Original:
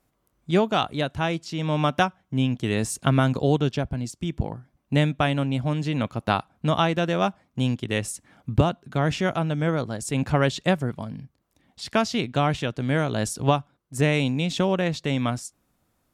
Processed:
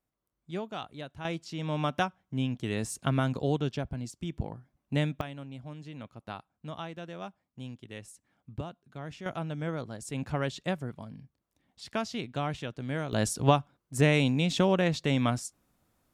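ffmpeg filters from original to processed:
ffmpeg -i in.wav -af "asetnsamples=nb_out_samples=441:pad=0,asendcmd='1.25 volume volume -7.5dB;5.21 volume volume -18dB;9.26 volume volume -10dB;13.13 volume volume -2dB',volume=-15.5dB" out.wav

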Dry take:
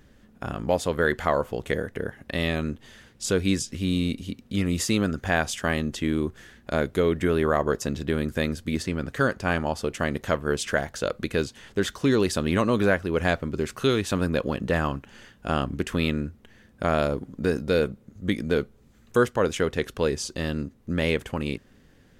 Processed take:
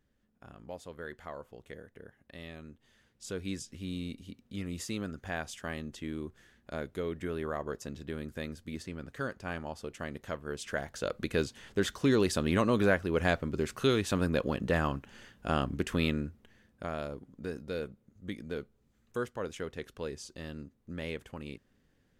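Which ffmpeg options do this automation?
ffmpeg -i in.wav -af "volume=-4.5dB,afade=type=in:start_time=2.72:duration=0.88:silence=0.446684,afade=type=in:start_time=10.54:duration=0.84:silence=0.375837,afade=type=out:start_time=16.05:duration=0.86:silence=0.334965" out.wav

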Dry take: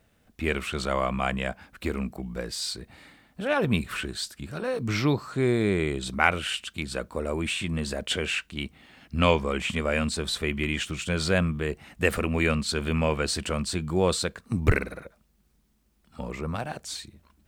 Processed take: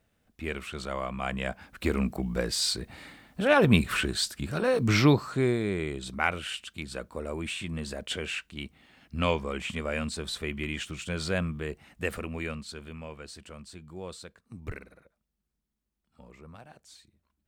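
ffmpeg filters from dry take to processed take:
ffmpeg -i in.wav -af "volume=4dB,afade=type=in:start_time=1.16:duration=1.01:silence=0.281838,afade=type=out:start_time=5.04:duration=0.58:silence=0.334965,afade=type=out:start_time=11.64:duration=1.33:silence=0.266073" out.wav

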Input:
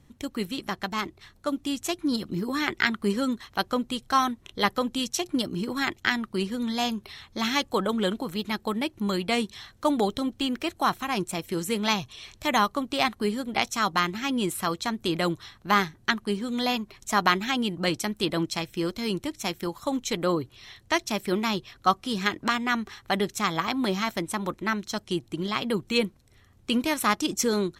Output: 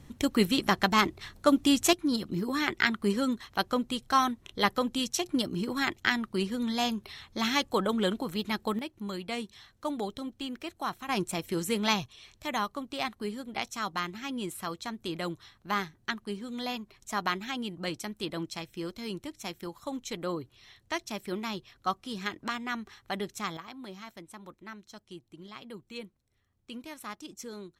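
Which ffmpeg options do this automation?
ffmpeg -i in.wav -af "asetnsamples=nb_out_samples=441:pad=0,asendcmd='1.93 volume volume -2dB;8.79 volume volume -9.5dB;11.09 volume volume -2dB;12.06 volume volume -8.5dB;23.57 volume volume -17.5dB',volume=6dB" out.wav

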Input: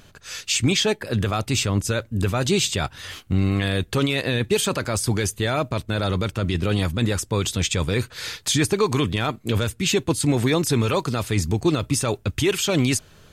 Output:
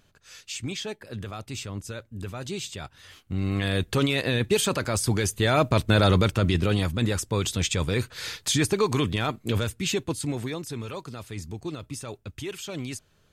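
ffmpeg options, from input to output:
ffmpeg -i in.wav -af "volume=5dB,afade=type=in:start_time=3.19:duration=0.58:silence=0.281838,afade=type=in:start_time=5.28:duration=0.62:silence=0.446684,afade=type=out:start_time=5.9:duration=0.92:silence=0.398107,afade=type=out:start_time=9.47:duration=1.15:silence=0.281838" out.wav

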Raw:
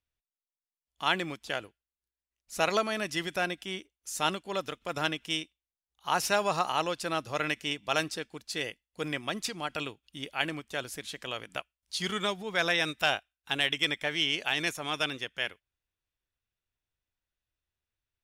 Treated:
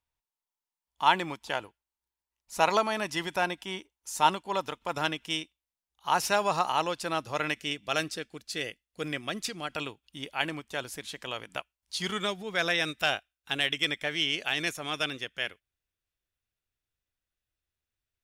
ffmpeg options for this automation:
ffmpeg -i in.wav -af "asetnsamples=nb_out_samples=441:pad=0,asendcmd='4.95 equalizer g 4.5;7.57 equalizer g -6;9.72 equalizer g 4;12.19 equalizer g -3.5',equalizer=frequency=920:width_type=o:width=0.4:gain=12.5" out.wav

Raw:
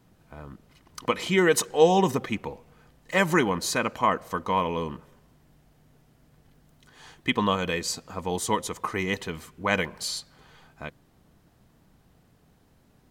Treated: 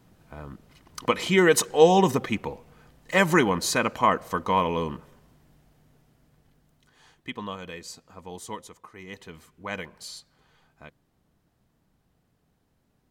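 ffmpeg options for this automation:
ffmpeg -i in.wav -af "volume=12dB,afade=type=out:start_time=4.92:duration=2.4:silence=0.223872,afade=type=out:start_time=8.55:duration=0.35:silence=0.398107,afade=type=in:start_time=8.9:duration=0.46:silence=0.316228" out.wav

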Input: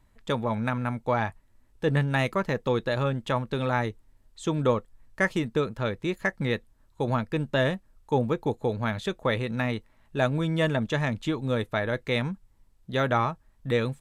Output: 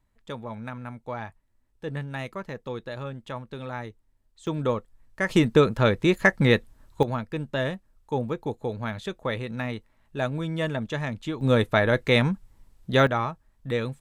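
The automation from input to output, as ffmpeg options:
ffmpeg -i in.wav -af "asetnsamples=nb_out_samples=441:pad=0,asendcmd='4.47 volume volume -2dB;5.29 volume volume 8dB;7.03 volume volume -3dB;11.41 volume volume 6.5dB;13.07 volume volume -2dB',volume=-8.5dB" out.wav

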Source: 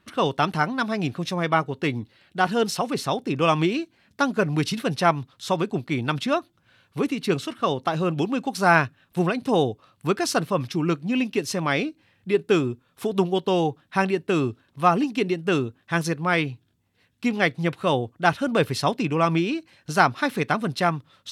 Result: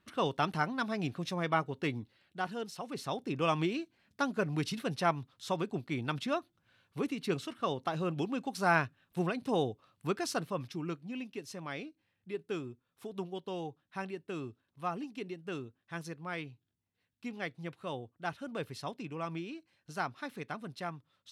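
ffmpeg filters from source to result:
ffmpeg -i in.wav -af "afade=type=out:start_time=1.86:duration=0.85:silence=0.316228,afade=type=in:start_time=2.71:duration=0.52:silence=0.354813,afade=type=out:start_time=10.06:duration=1.15:silence=0.421697" out.wav

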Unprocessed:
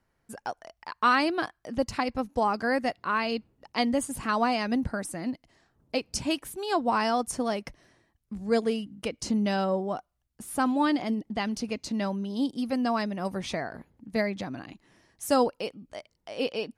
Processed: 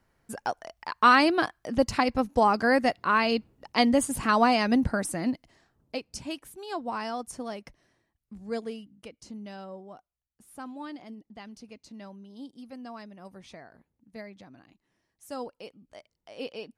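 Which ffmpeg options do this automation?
ffmpeg -i in.wav -af "volume=11.5dB,afade=type=out:start_time=5.26:duration=0.8:silence=0.266073,afade=type=out:start_time=8.48:duration=0.76:silence=0.421697,afade=type=in:start_time=15.3:duration=0.67:silence=0.421697" out.wav

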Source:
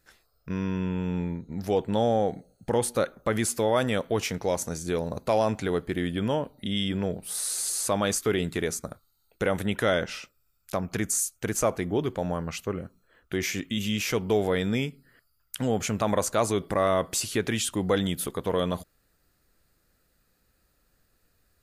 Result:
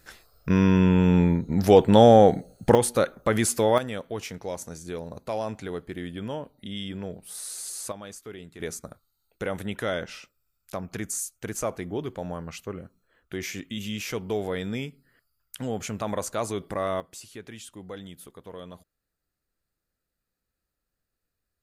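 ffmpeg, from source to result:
ffmpeg -i in.wav -af "asetnsamples=nb_out_samples=441:pad=0,asendcmd='2.75 volume volume 3dB;3.78 volume volume -6.5dB;7.92 volume volume -15.5dB;8.6 volume volume -4.5dB;17 volume volume -15dB',volume=10dB" out.wav

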